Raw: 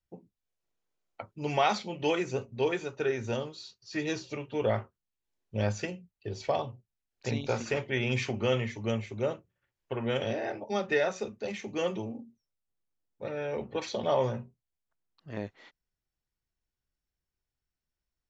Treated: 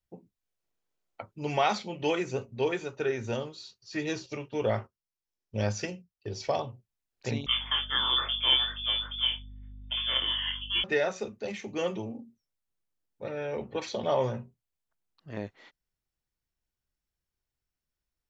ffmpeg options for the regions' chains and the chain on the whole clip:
-filter_complex "[0:a]asettb=1/sr,asplit=3[a][b][c];[a]atrim=end=4.264[d];[b]atrim=start=4.26:end=6.6,asetpts=PTS-STARTPTS,afade=t=in:d=0.004:c=qsin,afade=t=out:st=2.336:d=0.004:c=qsin,agate=range=-8dB:threshold=-51dB:ratio=16:release=100:detection=peak,equalizer=f=5.4k:w=3.4:g=9[e];[c]atrim=start=6.596[f];[d][e]acrossfade=d=0.004:c1=hsin:c2=qsin[g];[g][f]acrossfade=d=0.004:c1=qsin:c2=hsin,asettb=1/sr,asplit=3[h][i][j];[h]atrim=end=7.464[k];[i]atrim=start=7.46:end=10.84,asetpts=PTS-STARTPTS,afade=t=in:d=0.004:c=qsin,afade=t=out:st=3.376:d=0.004:c=qsin,lowpass=f=3.1k:t=q:w=0.5098,lowpass=f=3.1k:t=q:w=0.6013,lowpass=f=3.1k:t=q:w=0.9,lowpass=f=3.1k:t=q:w=2.563,afreqshift=-3600,aeval=exprs='val(0)+0.00501*(sin(2*PI*50*n/s)+sin(2*PI*2*50*n/s)/2+sin(2*PI*3*50*n/s)/3+sin(2*PI*4*50*n/s)/4+sin(2*PI*5*50*n/s)/5)':c=same,asplit=2[l][m];[m]adelay=23,volume=-4dB[n];[l][n]amix=inputs=2:normalize=0,atrim=end_sample=149058[o];[j]atrim=start=10.836[p];[k][o]acrossfade=d=0.004:c1=hsin:c2=qsin[q];[q][p]acrossfade=d=0.004:c1=qsin:c2=hsin"

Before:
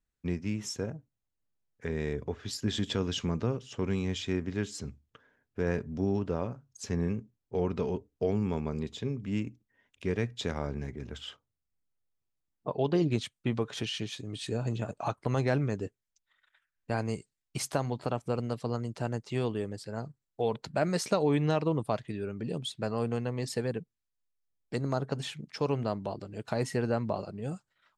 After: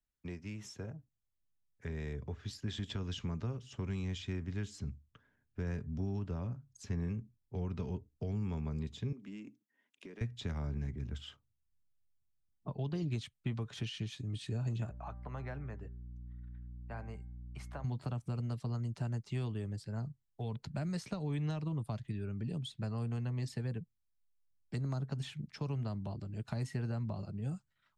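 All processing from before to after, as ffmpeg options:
-filter_complex "[0:a]asettb=1/sr,asplit=3[a][b][c];[a]atrim=end=9.124[d];[b]atrim=start=9.12:end=10.21,asetpts=PTS-STARTPTS,afade=t=in:d=0.004:c=qsin,afade=t=out:st=1.086:d=0.004:c=qsin,highpass=f=250:w=0.5412,highpass=f=250:w=1.3066,acompressor=threshold=-39dB:ratio=6:attack=3.2:release=140:knee=1:detection=peak[e];[c]atrim=start=10.206[f];[d][e]acrossfade=d=0.004:c1=hsin:c2=qsin[g];[g][f]acrossfade=d=0.004:c1=qsin:c2=hsin,asettb=1/sr,asplit=3[h][i][j];[h]atrim=end=14.894[k];[i]atrim=start=14.89:end=17.84,asetpts=PTS-STARTPTS,afade=t=in:d=0.004:c=qsin,afade=t=out:st=2.946:d=0.004:c=qsin,acrossover=split=490 2300:gain=0.141 1 0.126[l][m][n];[l][m][n]amix=inputs=3:normalize=0,bandreject=f=196.2:t=h:w=4,bandreject=f=392.4:t=h:w=4,bandreject=f=588.6:t=h:w=4,bandreject=f=784.8:t=h:w=4,bandreject=f=981:t=h:w=4,bandreject=f=1.1772k:t=h:w=4,bandreject=f=1.3734k:t=h:w=4,bandreject=f=1.5696k:t=h:w=4,bandreject=f=1.7658k:t=h:w=4,bandreject=f=1.962k:t=h:w=4,bandreject=f=2.1582k:t=h:w=4,aeval=exprs='val(0)+0.00316*(sin(2*PI*60*n/s)+sin(2*PI*2*60*n/s)/2+sin(2*PI*3*60*n/s)/3+sin(2*PI*4*60*n/s)/4+sin(2*PI*5*60*n/s)/5)':c=same[o];[j]atrim=start=17.836[p];[k][o]acrossfade=d=0.004:c1=hsin:c2=qsin[q];[q][p]acrossfade=d=0.004:c1=qsin:c2=hsin,acrossover=split=180|360|4100[r][s][t][u];[r]acompressor=threshold=-39dB:ratio=4[v];[s]acompressor=threshold=-45dB:ratio=4[w];[t]acompressor=threshold=-35dB:ratio=4[x];[u]acompressor=threshold=-47dB:ratio=4[y];[v][w][x][y]amix=inputs=4:normalize=0,bandreject=f=490:w=12,asubboost=boost=4:cutoff=210,volume=-7dB"

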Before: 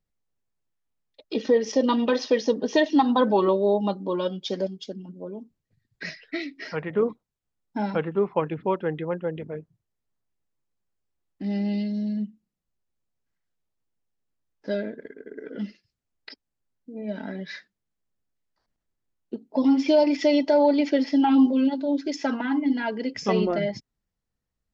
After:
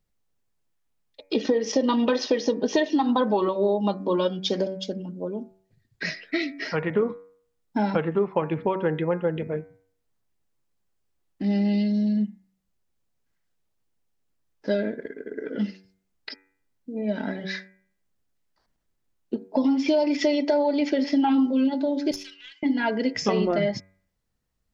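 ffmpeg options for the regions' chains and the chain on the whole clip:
-filter_complex "[0:a]asettb=1/sr,asplit=3[a][b][c];[a]atrim=end=22.114[d];[b]atrim=start=22.11:end=22.63,asetpts=PTS-STARTPTS,afade=t=in:d=0.004:c=qsin,afade=t=out:st=0.516:d=0.004:c=qsin,asuperpass=centerf=4200:order=8:qfactor=0.88,aeval=exprs='(tanh(25.1*val(0)+0.6)-tanh(0.6))/25.1':c=same[e];[c]atrim=start=22.626[f];[d][e]acrossfade=d=0.004:c1=hsin:c2=qsin[g];[g][f]acrossfade=d=0.004:c1=qsin:c2=hsin,acompressor=threshold=-24dB:ratio=6,bandreject=f=95.28:t=h:w=4,bandreject=f=190.56:t=h:w=4,bandreject=f=285.84:t=h:w=4,bandreject=f=381.12:t=h:w=4,bandreject=f=476.4:t=h:w=4,bandreject=f=571.68:t=h:w=4,bandreject=f=666.96:t=h:w=4,bandreject=f=762.24:t=h:w=4,bandreject=f=857.52:t=h:w=4,bandreject=f=952.8:t=h:w=4,bandreject=f=1.04808k:t=h:w=4,bandreject=f=1.14336k:t=h:w=4,bandreject=f=1.23864k:t=h:w=4,bandreject=f=1.33392k:t=h:w=4,bandreject=f=1.4292k:t=h:w=4,bandreject=f=1.52448k:t=h:w=4,bandreject=f=1.61976k:t=h:w=4,bandreject=f=1.71504k:t=h:w=4,bandreject=f=1.81032k:t=h:w=4,bandreject=f=1.9056k:t=h:w=4,bandreject=f=2.00088k:t=h:w=4,bandreject=f=2.09616k:t=h:w=4,bandreject=f=2.19144k:t=h:w=4,bandreject=f=2.28672k:t=h:w=4,bandreject=f=2.382k:t=h:w=4,bandreject=f=2.47728k:t=h:w=4,volume=5.5dB"

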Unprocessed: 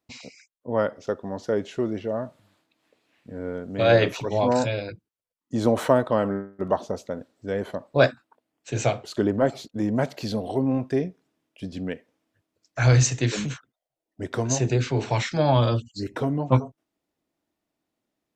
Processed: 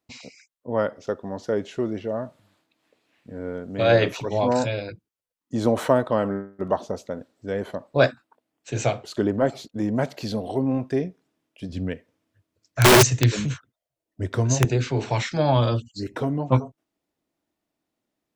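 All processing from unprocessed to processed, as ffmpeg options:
-filter_complex "[0:a]asettb=1/sr,asplit=3[a][b][c];[a]atrim=end=11.694[d];[b]atrim=start=11.69:end=14.65,asetpts=PTS-STARTPTS,afade=t=in:d=0.004:c=qsin,afade=t=out:st=2.956:d=0.004:c=qsin,equalizer=f=93:w=1.3:g=10,bandreject=f=780:w=9.7,aeval=exprs='(mod(2.66*val(0)+1,2)-1)/2.66':c=same[e];[c]atrim=start=14.646[f];[d][e]acrossfade=d=0.004:c1=hsin:c2=qsin[g];[g][f]acrossfade=d=0.004:c1=qsin:c2=hsin"

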